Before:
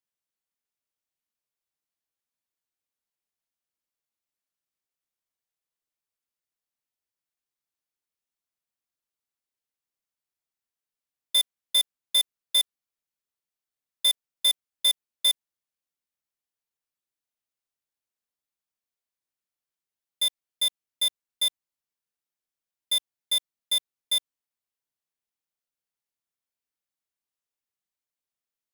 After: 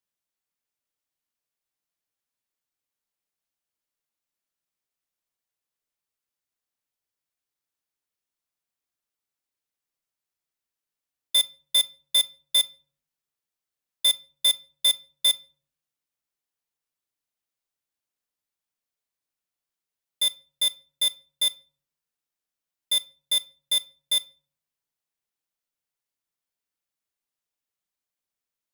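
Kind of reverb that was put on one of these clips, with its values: shoebox room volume 460 m³, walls furnished, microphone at 0.36 m; gain +1.5 dB

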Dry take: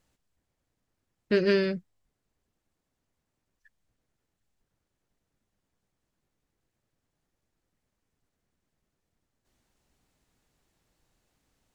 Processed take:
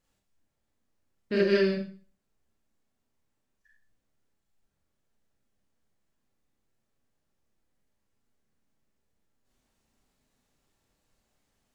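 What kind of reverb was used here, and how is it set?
Schroeder reverb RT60 0.41 s, combs from 28 ms, DRR -3.5 dB; gain -6 dB

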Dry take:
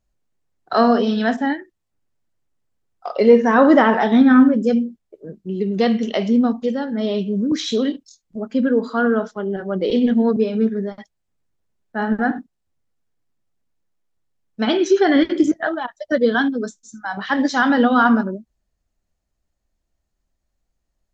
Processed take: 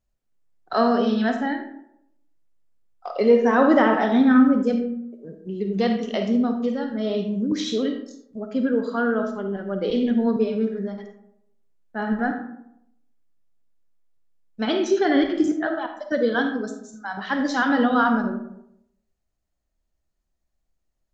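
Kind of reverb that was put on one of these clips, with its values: digital reverb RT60 0.77 s, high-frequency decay 0.45×, pre-delay 10 ms, DRR 6 dB; gain -5 dB

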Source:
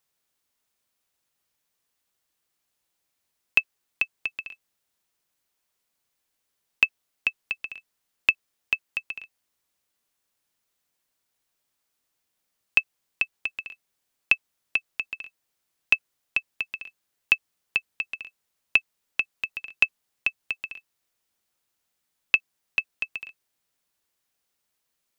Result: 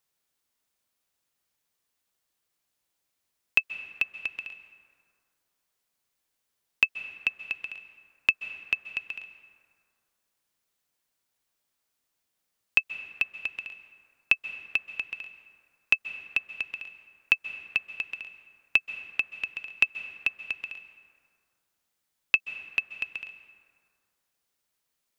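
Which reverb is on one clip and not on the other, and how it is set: plate-style reverb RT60 2.2 s, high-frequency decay 0.45×, pre-delay 0.12 s, DRR 12 dB; gain -2 dB

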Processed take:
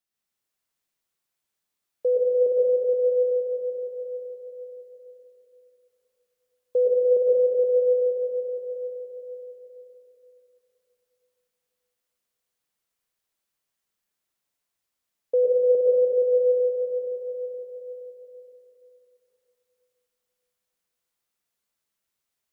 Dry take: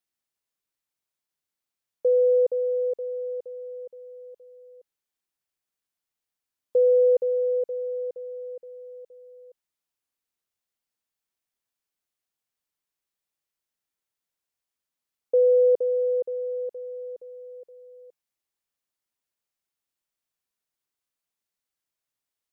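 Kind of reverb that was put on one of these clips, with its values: plate-style reverb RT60 3.1 s, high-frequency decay 0.95×, pre-delay 90 ms, DRR -5.5 dB; gain -1.5 dB

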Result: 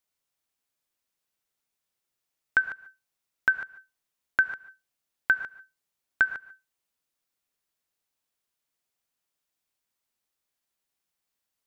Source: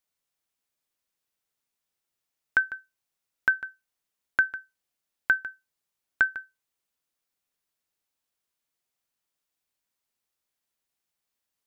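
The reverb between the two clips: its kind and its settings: non-linear reverb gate 0.16 s rising, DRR 11.5 dB

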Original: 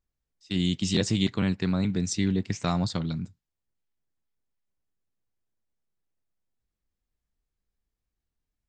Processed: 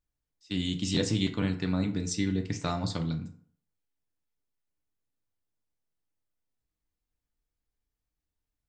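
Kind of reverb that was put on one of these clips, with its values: FDN reverb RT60 0.56 s, low-frequency decay 0.85×, high-frequency decay 0.6×, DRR 5 dB; gain -3.5 dB

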